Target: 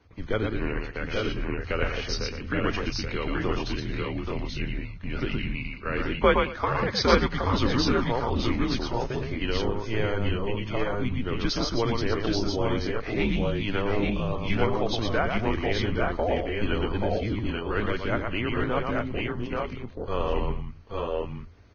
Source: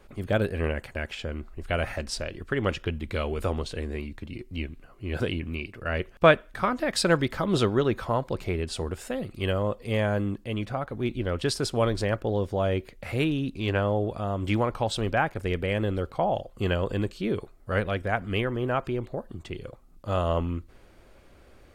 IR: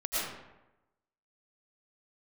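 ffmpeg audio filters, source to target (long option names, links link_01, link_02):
-filter_complex "[0:a]agate=range=-9dB:threshold=-39dB:ratio=16:detection=peak,asplit=2[link_01][link_02];[link_02]acompressor=threshold=-37dB:ratio=10,volume=0dB[link_03];[link_01][link_03]amix=inputs=2:normalize=0,afreqshift=-110,aecho=1:1:117|118|221|830|855:0.631|0.178|0.112|0.631|0.596,volume=-3.5dB" -ar 16000 -c:a libvorbis -b:a 16k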